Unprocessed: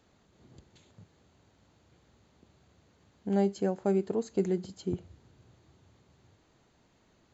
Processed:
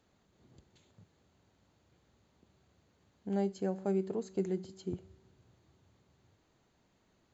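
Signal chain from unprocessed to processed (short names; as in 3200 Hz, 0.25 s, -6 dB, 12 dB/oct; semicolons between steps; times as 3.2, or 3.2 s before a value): resonator 190 Hz, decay 1.1 s, mix 50%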